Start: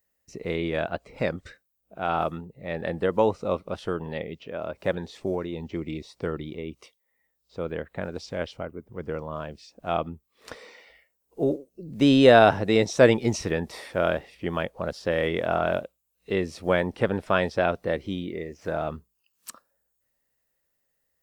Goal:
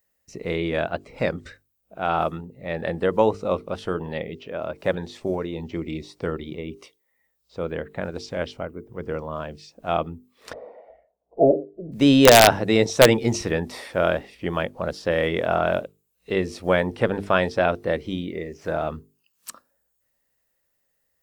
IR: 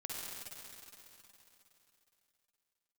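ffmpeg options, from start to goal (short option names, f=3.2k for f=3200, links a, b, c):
-filter_complex "[0:a]aeval=exprs='(mod(1.88*val(0)+1,2)-1)/1.88':c=same,asettb=1/sr,asplit=3[a][b][c];[a]atrim=end=10.534[d];[b]atrim=start=10.53:end=11.92,asetpts=PTS-STARTPTS,afade=t=in:d=0.004:c=qsin,afade=t=out:st=1.386:d=0.004:c=qsin,lowpass=f=670:t=q:w=6.3[e];[c]atrim=start=11.916[f];[d][e]acrossfade=d=0.004:c1=hsin:c2=qsin[g];[g][f]acrossfade=d=0.004:c1=qsin:c2=hsin,bandreject=f=50:t=h:w=6,bandreject=f=100:t=h:w=6,bandreject=f=150:t=h:w=6,bandreject=f=200:t=h:w=6,bandreject=f=250:t=h:w=6,bandreject=f=300:t=h:w=6,bandreject=f=350:t=h:w=6,bandreject=f=400:t=h:w=6,bandreject=f=450:t=h:w=6,volume=3dB"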